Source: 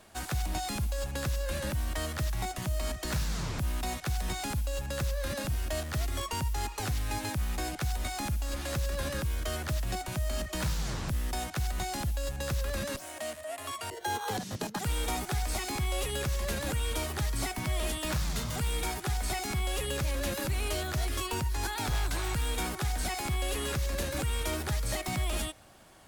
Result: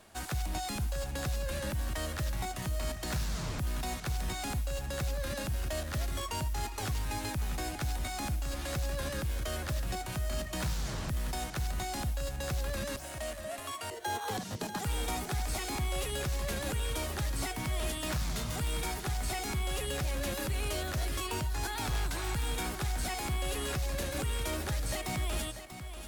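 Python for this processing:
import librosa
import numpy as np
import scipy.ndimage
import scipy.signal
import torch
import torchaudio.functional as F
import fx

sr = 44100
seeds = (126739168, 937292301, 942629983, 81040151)

p1 = x + 10.0 ** (-11.0 / 20.0) * np.pad(x, (int(639 * sr / 1000.0), 0))[:len(x)]
p2 = 10.0 ** (-31.0 / 20.0) * np.tanh(p1 / 10.0 ** (-31.0 / 20.0))
p3 = p1 + (p2 * 10.0 ** (-9.0 / 20.0))
y = p3 * 10.0 ** (-4.0 / 20.0)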